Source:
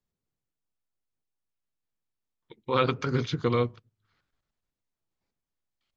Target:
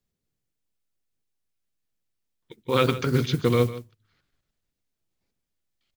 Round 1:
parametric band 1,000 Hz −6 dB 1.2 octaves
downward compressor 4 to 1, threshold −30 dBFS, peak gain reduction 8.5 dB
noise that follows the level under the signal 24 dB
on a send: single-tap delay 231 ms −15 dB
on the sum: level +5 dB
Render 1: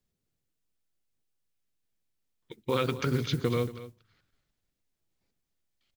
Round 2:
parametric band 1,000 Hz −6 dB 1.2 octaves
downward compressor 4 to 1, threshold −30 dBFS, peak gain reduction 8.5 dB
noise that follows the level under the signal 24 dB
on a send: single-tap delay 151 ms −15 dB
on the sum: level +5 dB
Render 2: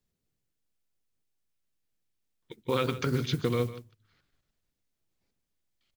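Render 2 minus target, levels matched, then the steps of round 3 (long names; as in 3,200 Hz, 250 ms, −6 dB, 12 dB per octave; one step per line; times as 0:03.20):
downward compressor: peak gain reduction +8.5 dB
parametric band 1,000 Hz −6 dB 1.2 octaves
noise that follows the level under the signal 24 dB
on a send: single-tap delay 151 ms −15 dB
on the sum: level +5 dB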